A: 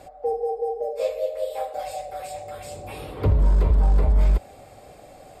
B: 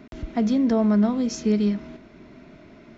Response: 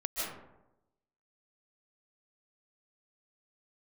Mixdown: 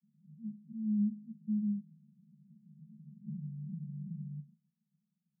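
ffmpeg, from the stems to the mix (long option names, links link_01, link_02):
-filter_complex "[0:a]asoftclip=type=tanh:threshold=-20.5dB,agate=range=-18dB:threshold=-42dB:ratio=16:detection=peak,volume=-3.5dB[link_01];[1:a]volume=-11dB,afade=type=in:start_time=0.68:duration=0.25:silence=0.446684[link_02];[link_01][link_02]amix=inputs=2:normalize=0,asuperpass=centerf=180:order=20:qfactor=2.2"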